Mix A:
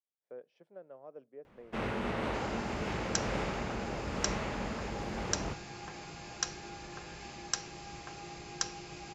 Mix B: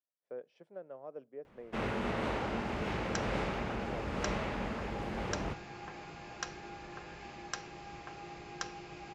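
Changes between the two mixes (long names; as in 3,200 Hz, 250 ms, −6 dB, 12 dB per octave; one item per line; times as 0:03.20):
speech +3.5 dB
second sound: add bass and treble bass −3 dB, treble −12 dB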